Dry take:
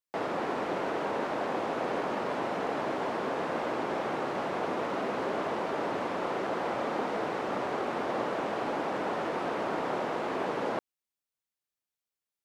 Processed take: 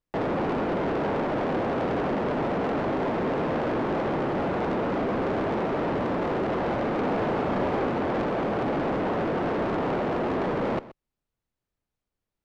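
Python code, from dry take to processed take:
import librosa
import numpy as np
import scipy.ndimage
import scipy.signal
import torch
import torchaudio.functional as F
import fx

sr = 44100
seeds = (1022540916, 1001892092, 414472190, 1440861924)

y = fx.tilt_eq(x, sr, slope=-4.0)
y = 10.0 ** (-30.5 / 20.0) * np.tanh(y / 10.0 ** (-30.5 / 20.0))
y = fx.doubler(y, sr, ms=36.0, db=-5.0, at=(7.0, 7.89))
y = y + 10.0 ** (-17.5 / 20.0) * np.pad(y, (int(126 * sr / 1000.0), 0))[:len(y)]
y = F.gain(torch.from_numpy(y), 7.0).numpy()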